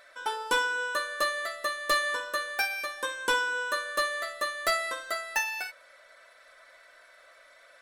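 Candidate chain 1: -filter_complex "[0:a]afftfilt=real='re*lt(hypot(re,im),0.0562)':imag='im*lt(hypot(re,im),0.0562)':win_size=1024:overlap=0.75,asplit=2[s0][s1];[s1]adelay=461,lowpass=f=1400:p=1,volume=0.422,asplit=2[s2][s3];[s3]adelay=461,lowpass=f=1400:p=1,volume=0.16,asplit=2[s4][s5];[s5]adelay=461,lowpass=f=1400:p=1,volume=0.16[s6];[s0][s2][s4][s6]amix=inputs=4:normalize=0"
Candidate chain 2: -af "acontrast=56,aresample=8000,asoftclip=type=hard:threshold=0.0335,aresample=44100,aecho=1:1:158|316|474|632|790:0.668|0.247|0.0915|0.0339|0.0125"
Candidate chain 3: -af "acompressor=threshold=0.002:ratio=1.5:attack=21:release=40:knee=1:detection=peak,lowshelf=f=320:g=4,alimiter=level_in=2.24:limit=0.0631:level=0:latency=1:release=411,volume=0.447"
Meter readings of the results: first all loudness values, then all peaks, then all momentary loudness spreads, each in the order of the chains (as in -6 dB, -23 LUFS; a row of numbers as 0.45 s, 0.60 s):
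-40.0 LUFS, -29.0 LUFS, -41.0 LUFS; -22.0 dBFS, -21.0 dBFS, -31.0 dBFS; 15 LU, 19 LU, 15 LU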